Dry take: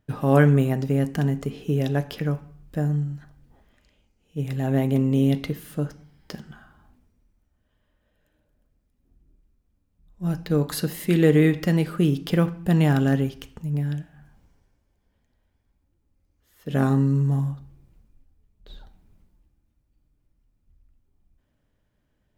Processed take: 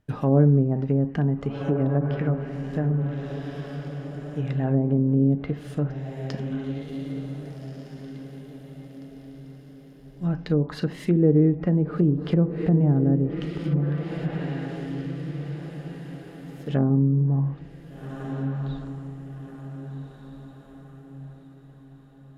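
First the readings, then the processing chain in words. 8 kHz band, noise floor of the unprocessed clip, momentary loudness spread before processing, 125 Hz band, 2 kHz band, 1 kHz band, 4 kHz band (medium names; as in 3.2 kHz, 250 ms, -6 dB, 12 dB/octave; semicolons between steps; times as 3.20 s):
under -10 dB, -71 dBFS, 15 LU, +0.5 dB, -7.5 dB, -4.0 dB, -7.0 dB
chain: echo that smears into a reverb 1564 ms, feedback 42%, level -9 dB; low-pass that closes with the level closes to 500 Hz, closed at -16.5 dBFS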